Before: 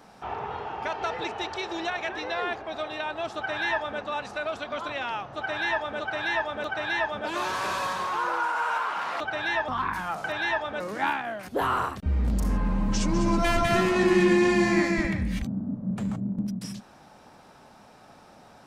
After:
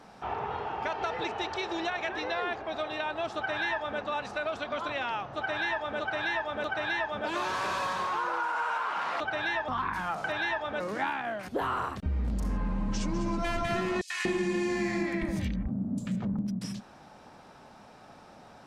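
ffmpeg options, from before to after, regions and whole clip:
ffmpeg -i in.wav -filter_complex "[0:a]asettb=1/sr,asplit=3[link_01][link_02][link_03];[link_01]atrim=end=14.014[link_04];[link_02]atrim=start=14.01:end=16.37,asetpts=PTS-STARTPTS,afade=type=in:duration=0.004:curve=qsin,afade=type=out:start_time=2.356:duration=0.004:curve=qsin,highshelf=frequency=3500:gain=8,acrossover=split=1300|4600[link_05][link_06][link_07];[link_06]adelay=90[link_08];[link_05]adelay=240[link_09];[link_09][link_08][link_07]amix=inputs=3:normalize=0,atrim=end_sample=104076[link_10];[link_03]atrim=start=16.366[link_11];[link_04][link_10]acrossfade=duration=0.004:curve1=hsin:curve2=qsin[link_12];[link_12][link_11]acrossfade=duration=0.004:curve1=qsin:curve2=hsin,highshelf=frequency=10000:gain=-10,acompressor=threshold=-27dB:ratio=6" out.wav

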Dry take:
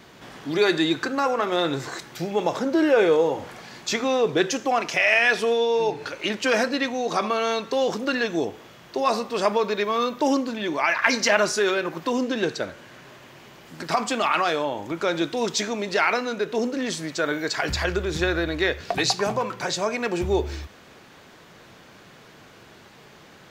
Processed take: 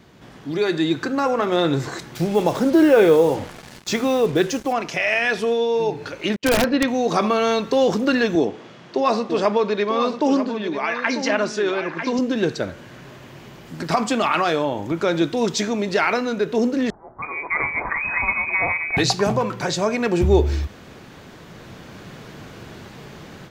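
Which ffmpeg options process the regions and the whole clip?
ffmpeg -i in.wav -filter_complex "[0:a]asettb=1/sr,asplit=3[link_01][link_02][link_03];[link_01]atrim=end=2.164[link_04];[link_02]atrim=start=2.16:end=4.73,asetpts=PTS-STARTPTS,afade=type=in:duration=0.004:curve=qsin,afade=type=out:start_time=2.566:duration=0.004:curve=qsin,highpass=43,acrusher=bits=5:mix=0:aa=0.5[link_05];[link_03]atrim=start=4.726[link_06];[link_04][link_05]acrossfade=duration=0.004:curve1=hsin:curve2=qsin[link_07];[link_07][link_06]acrossfade=duration=0.004:curve1=qsin:curve2=hsin,asettb=1/sr,asplit=3[link_08][link_09][link_10];[link_08]atrim=end=6.364[link_11];[link_09]atrim=start=6.36:end=6.88,asetpts=PTS-STARTPTS,afade=type=in:duration=0.004:curve=qsin,afade=type=out:start_time=0.516:duration=0.004:curve=qsin,agate=range=-44dB:threshold=-31dB:ratio=16:release=100:detection=peak,lowpass=3600,aeval=exprs='(mod(4.73*val(0)+1,2)-1)/4.73':channel_layout=same[link_12];[link_10]atrim=start=6.876[link_13];[link_11][link_12]acrossfade=duration=0.004:curve1=hsin:curve2=qsin[link_14];[link_14][link_13]acrossfade=duration=0.004:curve1=qsin:curve2=hsin,asettb=1/sr,asplit=3[link_15][link_16][link_17];[link_15]atrim=end=8.354[link_18];[link_16]atrim=start=8.35:end=12.19,asetpts=PTS-STARTPTS,afade=type=in:duration=0.004:curve=qsin,afade=type=out:start_time=3.836:duration=0.004:curve=qsin,highpass=170,lowpass=5900,aecho=1:1:944:0.422,atrim=end_sample=169344[link_19];[link_17]atrim=start=12.186[link_20];[link_18][link_19]acrossfade=duration=0.004:curve1=hsin:curve2=qsin[link_21];[link_21][link_20]acrossfade=duration=0.004:curve1=qsin:curve2=hsin,asettb=1/sr,asplit=3[link_22][link_23][link_24];[link_22]atrim=end=16.904[link_25];[link_23]atrim=start=16.9:end=18.97,asetpts=PTS-STARTPTS,afade=type=in:duration=0.004:curve=qsin,afade=type=out:start_time=2.066:duration=0.004:curve=qsin,acrossover=split=1500[link_26][link_27];[link_26]adelay=320[link_28];[link_28][link_27]amix=inputs=2:normalize=0,atrim=end_sample=91287,lowpass=frequency=2200:width_type=q:width=0.5098,lowpass=frequency=2200:width_type=q:width=0.6013,lowpass=frequency=2200:width_type=q:width=0.9,lowpass=frequency=2200:width_type=q:width=2.563,afreqshift=-2600[link_29];[link_24]atrim=start=18.966[link_30];[link_25][link_29]acrossfade=duration=0.004:curve1=hsin:curve2=qsin[link_31];[link_31][link_30]acrossfade=duration=0.004:curve1=qsin:curve2=hsin,dynaudnorm=framelen=670:gausssize=3:maxgain=11.5dB,lowshelf=frequency=330:gain=10,volume=-5.5dB" out.wav

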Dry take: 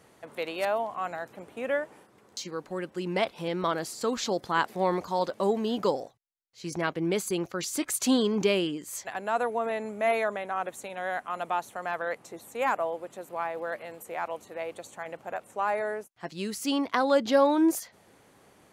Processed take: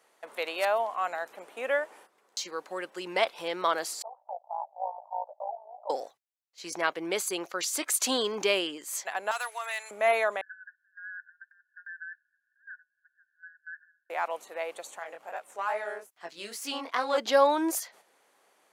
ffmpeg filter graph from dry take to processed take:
ffmpeg -i in.wav -filter_complex "[0:a]asettb=1/sr,asplit=3[link_01][link_02][link_03];[link_01]atrim=end=4.024[link_04];[link_02]atrim=start=4.02:end=5.9,asetpts=PTS-STARTPTS,afade=type=in:duration=0.004:curve=qsin,afade=type=out:start_time=1.876:duration=0.004:curve=qsin,asuperpass=centerf=730:order=8:qfactor=2.4,tremolo=f=55:d=0.71[link_05];[link_03]atrim=start=5.896[link_06];[link_04][link_05]acrossfade=duration=0.004:curve1=hsin:curve2=qsin[link_07];[link_07][link_06]acrossfade=duration=0.004:curve1=qsin:curve2=hsin,asettb=1/sr,asplit=3[link_08][link_09][link_10];[link_08]atrim=end=9.314[link_11];[link_09]atrim=start=9.31:end=9.91,asetpts=PTS-STARTPTS,afade=type=in:duration=0.004:curve=qsin,afade=type=out:start_time=0.596:duration=0.004:curve=qsin,highpass=1400,highshelf=frequency=2600:gain=10.5,asoftclip=type=hard:threshold=-29dB[link_12];[link_10]atrim=start=9.906[link_13];[link_11][link_12]acrossfade=duration=0.004:curve1=hsin:curve2=qsin[link_14];[link_14][link_13]acrossfade=duration=0.004:curve1=qsin:curve2=hsin,asettb=1/sr,asplit=3[link_15][link_16][link_17];[link_15]atrim=end=10.414[link_18];[link_16]atrim=start=10.41:end=14.1,asetpts=PTS-STARTPTS,afade=type=in:duration=0.004:curve=qsin,afade=type=out:start_time=3.686:duration=0.004:curve=qsin,acompressor=threshold=-32dB:ratio=6:attack=3.2:release=140:knee=1:detection=peak,asuperpass=centerf=1600:order=20:qfactor=4.9[link_19];[link_17]atrim=start=14.096[link_20];[link_18][link_19]acrossfade=duration=0.004:curve1=hsin:curve2=qsin[link_21];[link_21][link_20]acrossfade=duration=0.004:curve1=qsin:curve2=hsin,asettb=1/sr,asplit=3[link_22][link_23][link_24];[link_22]atrim=end=14.994[link_25];[link_23]atrim=start=14.99:end=17.18,asetpts=PTS-STARTPTS,afade=type=in:duration=0.004:curve=qsin,afade=type=out:start_time=2.186:duration=0.004:curve=qsin,aeval=exprs='if(lt(val(0),0),0.708*val(0),val(0))':channel_layout=same,flanger=delay=17.5:depth=7.4:speed=2.4,acompressor=mode=upward:threshold=-47dB:ratio=2.5:attack=3.2:release=140:knee=2.83:detection=peak[link_26];[link_24]atrim=start=17.176[link_27];[link_25][link_26]acrossfade=duration=0.004:curve1=hsin:curve2=qsin[link_28];[link_28][link_27]acrossfade=duration=0.004:curve1=qsin:curve2=hsin,agate=range=-8dB:threshold=-55dB:ratio=16:detection=peak,highpass=560,volume=3dB" out.wav

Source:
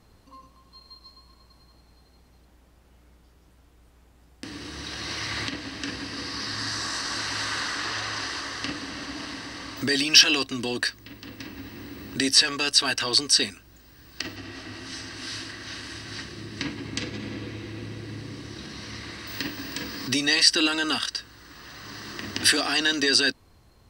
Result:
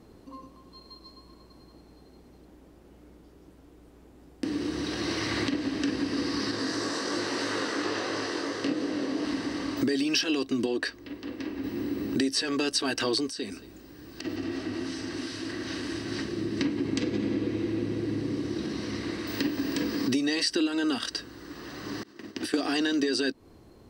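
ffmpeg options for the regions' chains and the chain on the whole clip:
ffmpeg -i in.wav -filter_complex "[0:a]asettb=1/sr,asplit=3[link_01][link_02][link_03];[link_01]atrim=end=6.514[link_04];[link_02]atrim=start=6.51:end=9.25,asetpts=PTS-STARTPTS,afade=type=in:duration=0.004:curve=qsin,afade=type=out:start_time=2.736:duration=0.004:curve=qsin,highpass=100,equalizer=frequency=480:width=2:gain=8,flanger=delay=19.5:depth=3.5:speed=2.9[link_05];[link_03]atrim=start=9.246[link_06];[link_04][link_05]acrossfade=duration=0.004:curve1=hsin:curve2=qsin[link_07];[link_07][link_06]acrossfade=duration=0.004:curve1=qsin:curve2=hsin,asettb=1/sr,asplit=3[link_08][link_09][link_10];[link_08]atrim=end=10.664[link_11];[link_09]atrim=start=10.66:end=11.64,asetpts=PTS-STARTPTS,afade=type=in:duration=0.004:curve=qsin,afade=type=out:start_time=0.976:duration=0.004:curve=qsin,lowpass=frequency=4000:poles=1,equalizer=frequency=150:width_type=o:width=1.3:gain=-11[link_12];[link_10]atrim=start=11.636[link_13];[link_11][link_12]acrossfade=duration=0.004:curve1=hsin:curve2=qsin[link_14];[link_14][link_13]acrossfade=duration=0.004:curve1=qsin:curve2=hsin,asettb=1/sr,asplit=3[link_15][link_16][link_17];[link_15]atrim=end=13.264[link_18];[link_16]atrim=start=13.26:end=15.5,asetpts=PTS-STARTPTS,afade=type=in:duration=0.004:curve=qsin,afade=type=out:start_time=2.236:duration=0.004:curve=qsin,acompressor=threshold=-35dB:ratio=4:attack=3.2:release=140:knee=1:detection=peak,aecho=1:1:225:0.126,atrim=end_sample=98784[link_19];[link_17]atrim=start=15.496[link_20];[link_18][link_19]acrossfade=duration=0.004:curve1=hsin:curve2=qsin[link_21];[link_21][link_20]acrossfade=duration=0.004:curve1=qsin:curve2=hsin,asettb=1/sr,asplit=3[link_22][link_23][link_24];[link_22]atrim=end=22.034[link_25];[link_23]atrim=start=22.03:end=22.54,asetpts=PTS-STARTPTS,afade=type=in:duration=0.004:curve=qsin,afade=type=out:start_time=0.506:duration=0.004:curve=qsin,agate=range=-33dB:threshold=-27dB:ratio=3:release=100:detection=peak,acompressor=threshold=-32dB:ratio=12:attack=3.2:release=140:knee=1:detection=peak,lowshelf=frequency=140:gain=-6[link_26];[link_24]atrim=start=22.536[link_27];[link_25][link_26]acrossfade=duration=0.004:curve1=hsin:curve2=qsin[link_28];[link_28][link_27]acrossfade=duration=0.004:curve1=qsin:curve2=hsin,equalizer=frequency=330:width=0.72:gain=14,acompressor=threshold=-22dB:ratio=6,volume=-2dB" out.wav

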